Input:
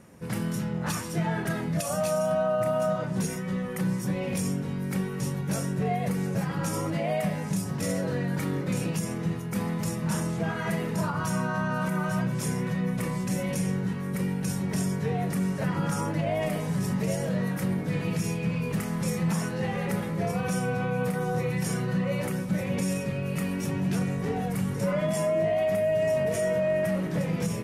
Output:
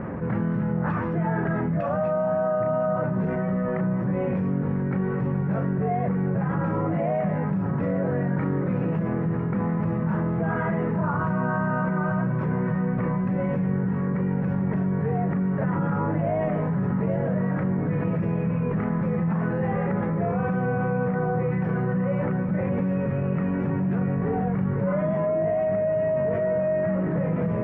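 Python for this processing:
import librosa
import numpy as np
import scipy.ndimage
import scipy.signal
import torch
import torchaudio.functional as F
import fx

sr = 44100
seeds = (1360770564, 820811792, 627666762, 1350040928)

y = scipy.signal.sosfilt(scipy.signal.butter(4, 1700.0, 'lowpass', fs=sr, output='sos'), x)
y = y + 10.0 ** (-14.5 / 20.0) * np.pad(y, (int(1000 * sr / 1000.0), 0))[:len(y)]
y = fx.env_flatten(y, sr, amount_pct=70)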